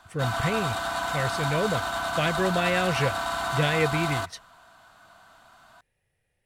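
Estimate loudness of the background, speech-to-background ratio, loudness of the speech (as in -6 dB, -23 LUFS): -29.0 LUFS, 1.0 dB, -28.0 LUFS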